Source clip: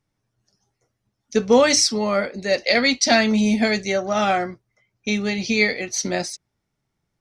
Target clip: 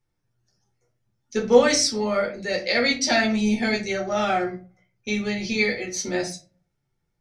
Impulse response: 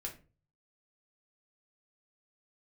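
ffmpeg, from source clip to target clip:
-filter_complex "[1:a]atrim=start_sample=2205[s0];[0:a][s0]afir=irnorm=-1:irlink=0,volume=0.841"

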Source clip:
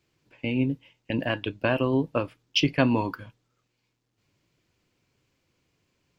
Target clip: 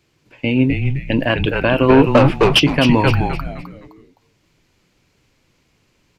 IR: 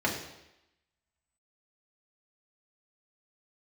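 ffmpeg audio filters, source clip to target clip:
-filter_complex "[0:a]asplit=3[s0][s1][s2];[s0]afade=t=out:st=1.88:d=0.02[s3];[s1]asplit=2[s4][s5];[s5]highpass=f=720:p=1,volume=17.8,asoftclip=type=tanh:threshold=0.355[s6];[s4][s6]amix=inputs=2:normalize=0,lowpass=f=1900:p=1,volume=0.501,afade=t=in:st=1.88:d=0.02,afade=t=out:st=2.58:d=0.02[s7];[s2]afade=t=in:st=2.58:d=0.02[s8];[s3][s7][s8]amix=inputs=3:normalize=0,asplit=2[s9][s10];[s10]asplit=4[s11][s12][s13][s14];[s11]adelay=258,afreqshift=-140,volume=0.668[s15];[s12]adelay=516,afreqshift=-280,volume=0.221[s16];[s13]adelay=774,afreqshift=-420,volume=0.0724[s17];[s14]adelay=1032,afreqshift=-560,volume=0.024[s18];[s15][s16][s17][s18]amix=inputs=4:normalize=0[s19];[s9][s19]amix=inputs=2:normalize=0,aresample=32000,aresample=44100,alimiter=level_in=3.55:limit=0.891:release=50:level=0:latency=1,volume=0.891"

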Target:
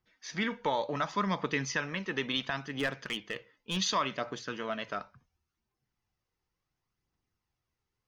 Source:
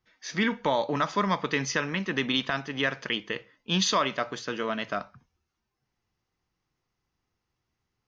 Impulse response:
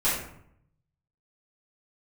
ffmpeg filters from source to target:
-filter_complex "[0:a]asettb=1/sr,asplit=3[s0][s1][s2];[s0]atrim=end=2.694[s3];[s1]atrim=start=2.69:end=3.77,asetpts=PTS-STARTPTS,afade=t=in:d=0.004:c=qsin,afade=t=out:st=1.076:d=0.004:c=qsin,volume=12.6,asoftclip=hard,volume=0.0794[s4];[s2]atrim=start=3.766[s5];[s3][s4]acrossfade=d=0.004:c1=hsin:c2=qsin[s6];[s6][s5]acrossfade=d=0.004:c1=qsin:c2=hsin,aphaser=in_gain=1:out_gain=1:delay=2.4:decay=0.33:speed=0.7:type=triangular,volume=0.531"

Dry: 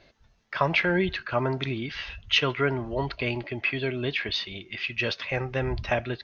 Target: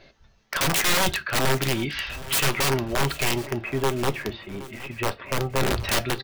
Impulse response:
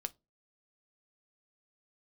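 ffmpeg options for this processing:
-filter_complex "[0:a]asettb=1/sr,asplit=3[s0][s1][s2];[s0]atrim=end=3.354[s3];[s1]atrim=start=3.35:end=5.6,asetpts=PTS-STARTPTS,afade=t=in:d=0.004:c=qsin,afade=t=out:st=2.246:d=0.004:c=qsin,lowpass=1200[s4];[s2]atrim=start=5.596[s5];[s3][s4]acrossfade=d=0.004:c1=hsin:c2=qsin[s6];[s6][s5]acrossfade=d=0.004:c1=qsin:c2=hsin,aeval=exprs='(mod(11.9*val(0)+1,2)-1)/11.9':c=same,aecho=1:1:769|1538|2307|3076:0.133|0.0653|0.032|0.0157[s7];[1:a]atrim=start_sample=2205[s8];[s7][s8]afir=irnorm=-1:irlink=0,volume=2.11"

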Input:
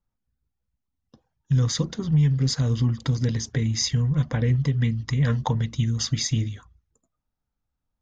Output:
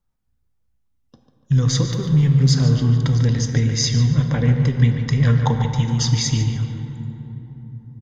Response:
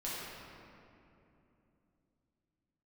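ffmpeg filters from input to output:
-filter_complex "[0:a]asettb=1/sr,asplit=3[s0][s1][s2];[s0]atrim=end=1.854[s3];[s1]atrim=start=1.85:end=2.5,asetpts=PTS-STARTPTS,afade=t=in:d=0.004:c=qsin,afade=t=out:st=0.646:d=0.004:c=qsin,aeval=exprs='sgn(val(0))*max(abs(val(0))-0.00299,0)':c=same[s4];[s2]atrim=start=2.496[s5];[s3][s4]acrossfade=d=0.004:c1=hsin:c2=qsin[s6];[s6][s5]acrossfade=d=0.004:c1=qsin:c2=hsin,asplit=2[s7][s8];[s8]adelay=145,lowpass=f=3600:p=1,volume=0.398,asplit=2[s9][s10];[s10]adelay=145,lowpass=f=3600:p=1,volume=0.47,asplit=2[s11][s12];[s12]adelay=145,lowpass=f=3600:p=1,volume=0.47,asplit=2[s13][s14];[s14]adelay=145,lowpass=f=3600:p=1,volume=0.47,asplit=2[s15][s16];[s16]adelay=145,lowpass=f=3600:p=1,volume=0.47[s17];[s7][s9][s11][s13][s15][s17]amix=inputs=6:normalize=0,asplit=2[s18][s19];[1:a]atrim=start_sample=2205,asetrate=32193,aresample=44100[s20];[s19][s20]afir=irnorm=-1:irlink=0,volume=0.335[s21];[s18][s21]amix=inputs=2:normalize=0,volume=1.26"

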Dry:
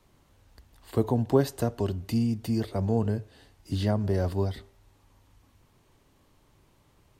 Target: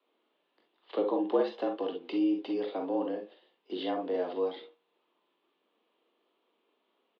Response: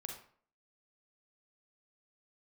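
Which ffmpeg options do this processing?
-filter_complex "[0:a]asplit=2[s0][s1];[s1]adelay=21,volume=0.224[s2];[s0][s2]amix=inputs=2:normalize=0,asplit=2[s3][s4];[s4]acompressor=threshold=0.0158:ratio=6,volume=1[s5];[s3][s5]amix=inputs=2:normalize=0,agate=range=0.282:threshold=0.00708:ratio=16:detection=peak,acrossover=split=1800[s6][s7];[s7]aexciter=amount=4:drive=5.3:freq=2500[s8];[s6][s8]amix=inputs=2:normalize=0,highshelf=f=2100:g=-8.5[s9];[1:a]atrim=start_sample=2205,atrim=end_sample=3087[s10];[s9][s10]afir=irnorm=-1:irlink=0,highpass=f=210:t=q:w=0.5412,highpass=f=210:t=q:w=1.307,lowpass=f=3400:t=q:w=0.5176,lowpass=f=3400:t=q:w=0.7071,lowpass=f=3400:t=q:w=1.932,afreqshift=80"

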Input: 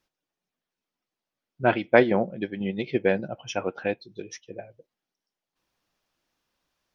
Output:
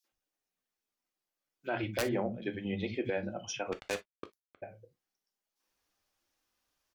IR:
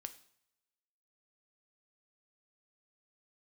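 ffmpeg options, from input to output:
-filter_complex "[0:a]acrossover=split=210|3600[s0][s1][s2];[s1]adelay=40[s3];[s0]adelay=120[s4];[s4][s3][s2]amix=inputs=3:normalize=0,flanger=delay=3.5:depth=2.6:regen=-70:speed=0.32:shape=triangular,asettb=1/sr,asplit=3[s5][s6][s7];[s5]atrim=end=3.724[s8];[s6]atrim=start=3.72:end=4.62,asetpts=PTS-STARTPTS,afade=t=in:d=0.004:c=qsin,afade=t=out:st=0.896:d=0.004:c=qsin,acrusher=bits=4:mix=0:aa=0.5[s9];[s7]atrim=start=4.616[s10];[s8][s9]acrossfade=d=0.004:c1=hsin:c2=qsin[s11];[s11][s10]acrossfade=d=0.004:c1=qsin:c2=hsin,highshelf=f=3400:g=7.5,aeval=exprs='(mod(3.35*val(0)+1,2)-1)/3.35':c=same[s12];[1:a]atrim=start_sample=2205,atrim=end_sample=3969,asetrate=61740,aresample=44100[s13];[s12][s13]afir=irnorm=-1:irlink=0,alimiter=level_in=1.88:limit=0.0631:level=0:latency=1:release=144,volume=0.531,asettb=1/sr,asplit=3[s14][s15][s16];[s14]atrim=end=1.834[s17];[s15]atrim=start=1.83:end=3.1,asetpts=PTS-STARTPTS,afade=t=in:d=0.004:c=qsin,afade=t=out:st=1.266:d=0.004:c=qsin,equalizer=f=87:t=o:w=1.3:g=8[s18];[s16]atrim=start=3.096[s19];[s17][s18]acrossfade=d=0.004:c1=hsin:c2=qsin[s20];[s20][s19]acrossfade=d=0.004:c1=qsin:c2=hsin,volume=2.11"

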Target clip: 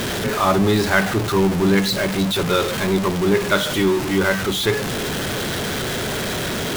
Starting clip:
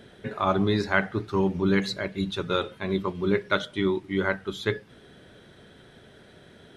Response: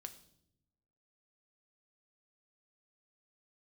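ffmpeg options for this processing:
-af "aeval=exprs='val(0)+0.5*0.0794*sgn(val(0))':c=same,volume=1.5"

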